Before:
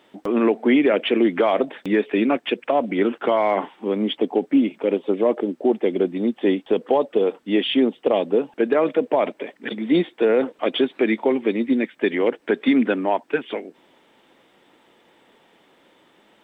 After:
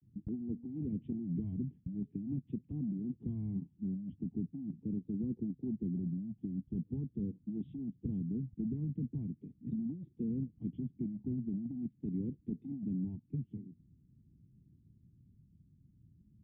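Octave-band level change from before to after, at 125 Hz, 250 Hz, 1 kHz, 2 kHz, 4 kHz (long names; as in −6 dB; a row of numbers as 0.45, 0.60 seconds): +0.5 dB, −15.5 dB, below −40 dB, below −40 dB, can't be measured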